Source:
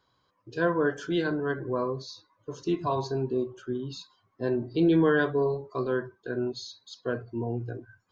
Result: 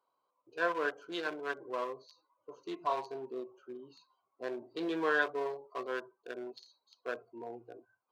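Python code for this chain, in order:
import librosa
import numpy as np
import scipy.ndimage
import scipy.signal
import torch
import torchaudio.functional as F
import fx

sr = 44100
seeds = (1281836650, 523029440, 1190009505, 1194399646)

y = fx.wiener(x, sr, points=25)
y = scipy.signal.sosfilt(scipy.signal.butter(2, 720.0, 'highpass', fs=sr, output='sos'), y)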